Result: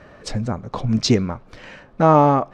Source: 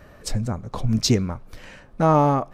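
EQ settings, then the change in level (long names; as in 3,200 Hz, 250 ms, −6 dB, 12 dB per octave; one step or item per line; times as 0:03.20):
high-frequency loss of the air 100 metres
low-shelf EQ 94 Hz −11.5 dB
+5.0 dB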